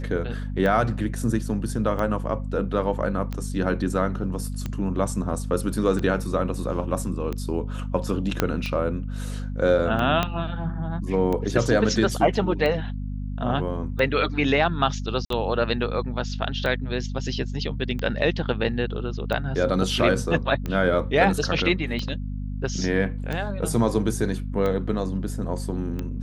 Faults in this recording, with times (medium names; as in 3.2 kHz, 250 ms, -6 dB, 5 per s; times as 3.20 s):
hum 50 Hz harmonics 5 -30 dBFS
tick 45 rpm -16 dBFS
8.40 s: pop -5 dBFS
10.23 s: pop -8 dBFS
15.25–15.30 s: dropout 53 ms